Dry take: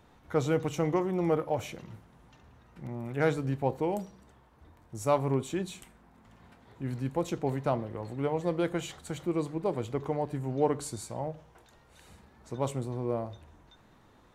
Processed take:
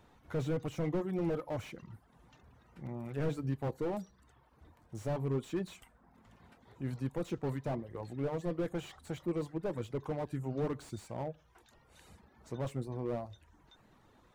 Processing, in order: reverb removal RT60 0.6 s; slew limiter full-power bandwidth 17 Hz; gain -2.5 dB

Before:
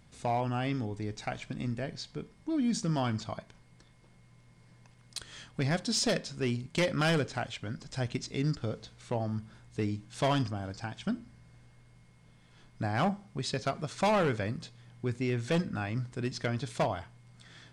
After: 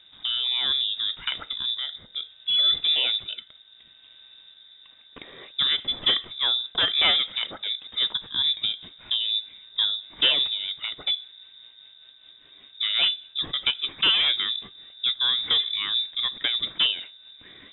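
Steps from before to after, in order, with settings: rotary speaker horn 0.65 Hz, later 5 Hz, at 4.46; inverted band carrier 3700 Hz; gain +8 dB

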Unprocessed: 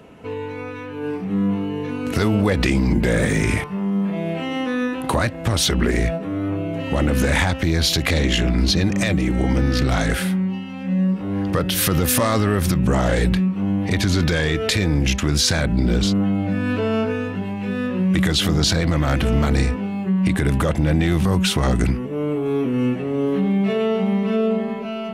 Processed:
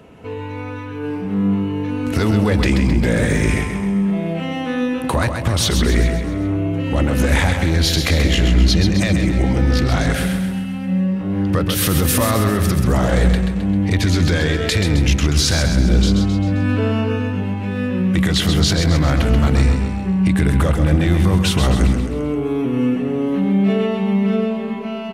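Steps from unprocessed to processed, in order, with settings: bell 69 Hz +4.5 dB 1.4 oct; on a send: feedback echo 0.132 s, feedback 52%, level -6.5 dB

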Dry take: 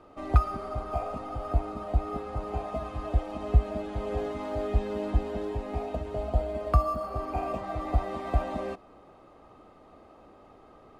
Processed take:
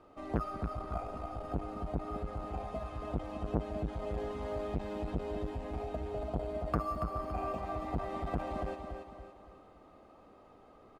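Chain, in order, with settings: feedback echo 0.282 s, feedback 43%, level -7 dB; core saturation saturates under 420 Hz; gain -5.5 dB

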